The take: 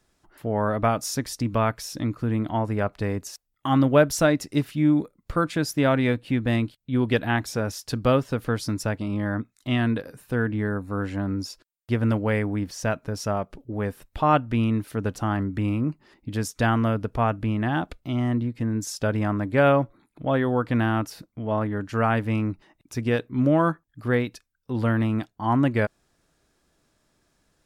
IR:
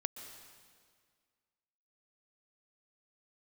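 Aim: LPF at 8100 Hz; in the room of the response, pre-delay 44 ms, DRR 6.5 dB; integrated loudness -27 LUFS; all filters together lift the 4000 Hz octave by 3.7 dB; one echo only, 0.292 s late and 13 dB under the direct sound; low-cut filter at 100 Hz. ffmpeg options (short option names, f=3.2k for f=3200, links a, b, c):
-filter_complex "[0:a]highpass=100,lowpass=8.1k,equalizer=f=4k:t=o:g=5.5,aecho=1:1:292:0.224,asplit=2[a][b];[1:a]atrim=start_sample=2205,adelay=44[c];[b][c]afir=irnorm=-1:irlink=0,volume=-6dB[d];[a][d]amix=inputs=2:normalize=0,volume=-3dB"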